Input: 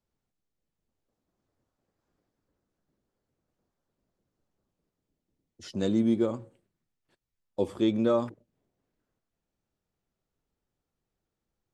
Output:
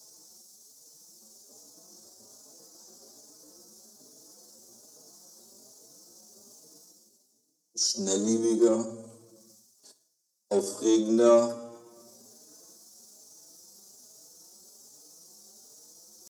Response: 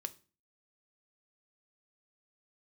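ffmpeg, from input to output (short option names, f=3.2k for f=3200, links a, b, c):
-filter_complex "[0:a]highshelf=f=4.1k:t=q:w=3:g=12,acrossover=split=2800[a][b];[a]adynamicsmooth=sensitivity=2:basefreq=1.2k[c];[c][b]amix=inputs=2:normalize=0[d];[1:a]atrim=start_sample=2205,asetrate=25578,aresample=44100[e];[d][e]afir=irnorm=-1:irlink=0,areverse,acompressor=mode=upward:threshold=-37dB:ratio=2.5,areverse,atempo=0.72,highpass=320,asplit=2[f][g];[g]adelay=4.3,afreqshift=1.2[h];[f][h]amix=inputs=2:normalize=1,volume=7dB"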